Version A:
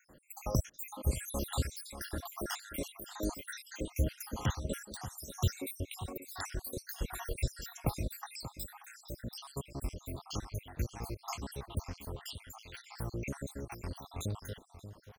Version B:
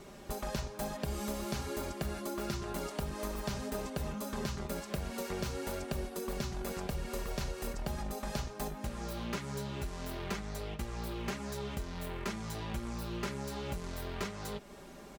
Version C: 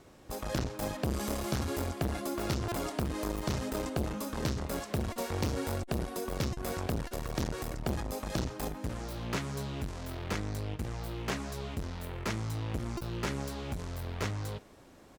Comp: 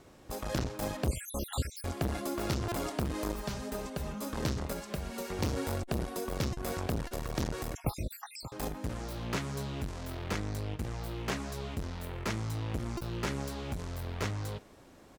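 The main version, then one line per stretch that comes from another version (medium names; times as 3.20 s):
C
1.08–1.84 s: from A
3.34–4.22 s: from B
4.73–5.39 s: from B
7.75–8.52 s: from A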